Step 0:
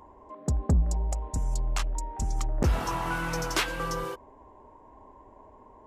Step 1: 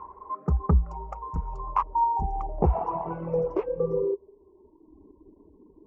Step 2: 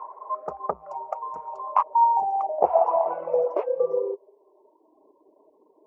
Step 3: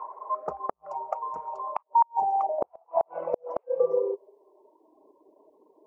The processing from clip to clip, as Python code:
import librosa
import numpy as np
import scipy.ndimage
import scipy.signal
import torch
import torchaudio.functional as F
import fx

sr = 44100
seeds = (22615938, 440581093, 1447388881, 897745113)

y1 = fx.dereverb_blind(x, sr, rt60_s=1.7)
y1 = fx.ripple_eq(y1, sr, per_octave=0.78, db=10)
y1 = fx.filter_sweep_lowpass(y1, sr, from_hz=1300.0, to_hz=300.0, start_s=1.2, end_s=5.01, q=6.4)
y2 = fx.highpass_res(y1, sr, hz=630.0, q=5.1)
y3 = fx.gate_flip(y2, sr, shuts_db=-12.0, range_db=-42)